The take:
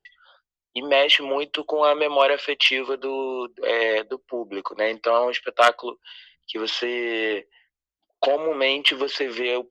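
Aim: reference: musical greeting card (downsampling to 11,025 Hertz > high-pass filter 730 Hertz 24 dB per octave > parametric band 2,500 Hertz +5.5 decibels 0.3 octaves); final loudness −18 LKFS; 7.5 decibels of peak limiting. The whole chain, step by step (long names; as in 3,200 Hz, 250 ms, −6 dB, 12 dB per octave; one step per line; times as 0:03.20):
brickwall limiter −13.5 dBFS
downsampling to 11,025 Hz
high-pass filter 730 Hz 24 dB per octave
parametric band 2,500 Hz +5.5 dB 0.3 octaves
level +8.5 dB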